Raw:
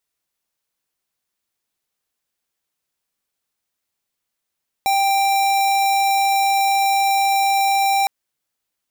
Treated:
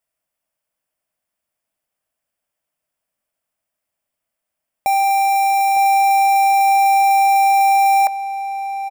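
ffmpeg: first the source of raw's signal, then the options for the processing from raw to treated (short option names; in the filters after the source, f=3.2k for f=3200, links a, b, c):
-f lavfi -i "aevalsrc='0.141*(2*lt(mod(787*t,1),0.5)-1)':d=3.21:s=44100"
-filter_complex "[0:a]equalizer=f=400:t=o:w=0.33:g=-7,equalizer=f=630:t=o:w=0.33:g=11,equalizer=f=4k:t=o:w=0.33:g=-12,equalizer=f=6.3k:t=o:w=0.33:g=-7,equalizer=f=16k:t=o:w=0.33:g=-4,asplit=2[a][b];[b]adelay=906,lowpass=f=2.8k:p=1,volume=-11dB,asplit=2[c][d];[d]adelay=906,lowpass=f=2.8k:p=1,volume=0.32,asplit=2[e][f];[f]adelay=906,lowpass=f=2.8k:p=1,volume=0.32[g];[c][e][g]amix=inputs=3:normalize=0[h];[a][h]amix=inputs=2:normalize=0"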